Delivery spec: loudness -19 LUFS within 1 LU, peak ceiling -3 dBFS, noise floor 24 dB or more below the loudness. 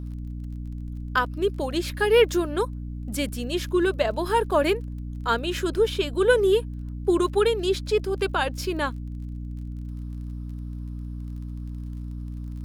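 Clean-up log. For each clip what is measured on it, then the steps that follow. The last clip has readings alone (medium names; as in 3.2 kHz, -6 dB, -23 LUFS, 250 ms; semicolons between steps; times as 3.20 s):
tick rate 25 per s; hum 60 Hz; highest harmonic 300 Hz; hum level -31 dBFS; loudness -26.0 LUFS; peak level -7.0 dBFS; loudness target -19.0 LUFS
-> de-click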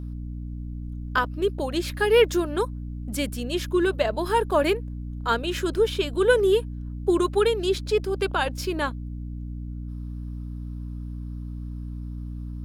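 tick rate 0.47 per s; hum 60 Hz; highest harmonic 300 Hz; hum level -31 dBFS
-> de-hum 60 Hz, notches 5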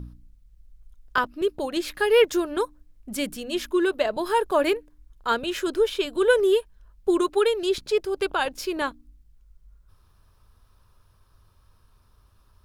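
hum not found; loudness -24.5 LUFS; peak level -7.5 dBFS; loudness target -19.0 LUFS
-> trim +5.5 dB; peak limiter -3 dBFS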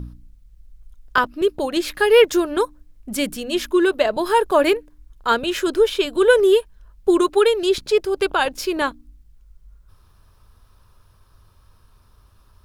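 loudness -19.0 LUFS; peak level -3.0 dBFS; noise floor -55 dBFS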